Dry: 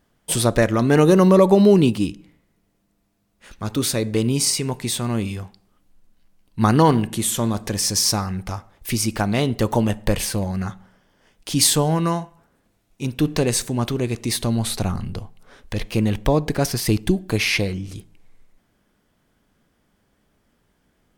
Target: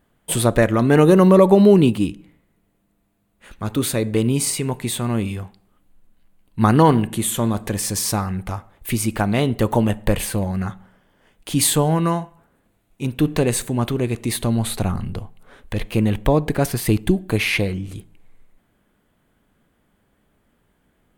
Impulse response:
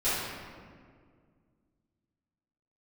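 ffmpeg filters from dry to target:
-af "equalizer=frequency=5400:width=2:gain=-11,volume=1.5dB"

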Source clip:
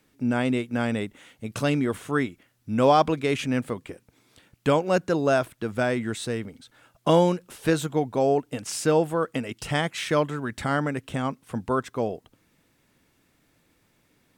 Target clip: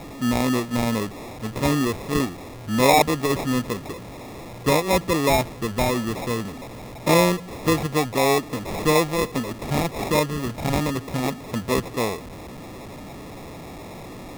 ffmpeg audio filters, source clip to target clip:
ffmpeg -i in.wav -af "aeval=exprs='val(0)+0.5*0.0211*sgn(val(0))':channel_layout=same,acrusher=samples=29:mix=1:aa=0.000001,volume=1.5dB" out.wav

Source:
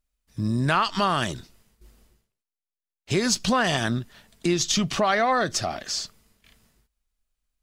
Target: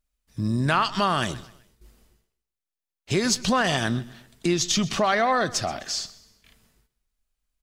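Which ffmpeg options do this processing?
ffmpeg -i in.wav -af "aecho=1:1:128|256|384:0.112|0.0438|0.0171" out.wav

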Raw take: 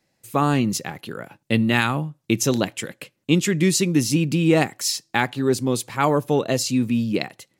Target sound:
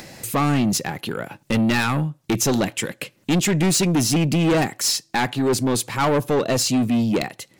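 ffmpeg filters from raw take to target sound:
ffmpeg -i in.wav -af "acompressor=mode=upward:threshold=-28dB:ratio=2.5,asoftclip=type=tanh:threshold=-21dB,volume=6dB" out.wav

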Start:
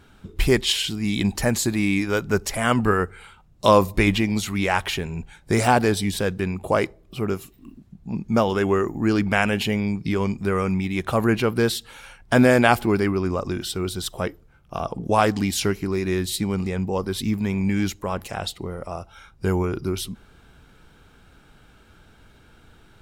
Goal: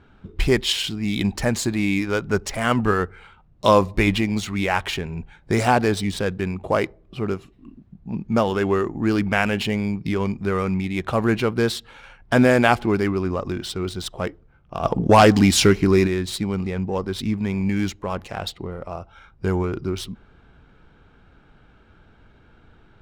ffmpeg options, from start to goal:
ffmpeg -i in.wav -filter_complex "[0:a]asplit=3[link_01][link_02][link_03];[link_01]afade=type=out:start_time=14.83:duration=0.02[link_04];[link_02]aeval=exprs='0.562*sin(PI/2*1.78*val(0)/0.562)':channel_layout=same,afade=type=in:start_time=14.83:duration=0.02,afade=type=out:start_time=16.06:duration=0.02[link_05];[link_03]afade=type=in:start_time=16.06:duration=0.02[link_06];[link_04][link_05][link_06]amix=inputs=3:normalize=0,adynamicsmooth=sensitivity=7.5:basefreq=3000" out.wav

